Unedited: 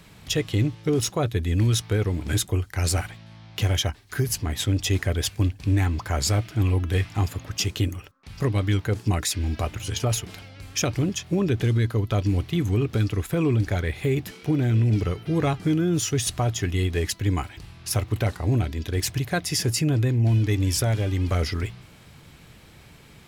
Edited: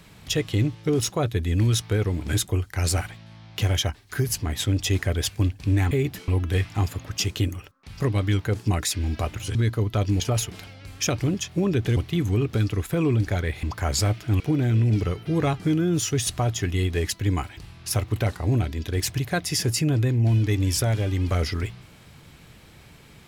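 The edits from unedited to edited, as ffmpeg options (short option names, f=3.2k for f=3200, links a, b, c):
-filter_complex "[0:a]asplit=8[a][b][c][d][e][f][g][h];[a]atrim=end=5.912[i];[b]atrim=start=14.028:end=14.402[j];[c]atrim=start=6.678:end=9.952[k];[d]atrim=start=11.718:end=12.372[l];[e]atrim=start=9.948:end=11.722[m];[f]atrim=start=12.368:end=14.032[n];[g]atrim=start=5.908:end=6.682[o];[h]atrim=start=14.398[p];[i][j]acrossfade=d=0.004:c1=hsin:c2=hsin[q];[q][k]acrossfade=d=0.004:c1=hsin:c2=hsin[r];[r][l]acrossfade=d=0.004:c1=hsin:c2=hsin[s];[s][m]acrossfade=d=0.004:c1=hsin:c2=hsin[t];[t][n]acrossfade=d=0.004:c1=hsin:c2=hsin[u];[u][o]acrossfade=d=0.004:c1=hsin:c2=hsin[v];[v][p]acrossfade=d=0.004:c1=hsin:c2=hsin"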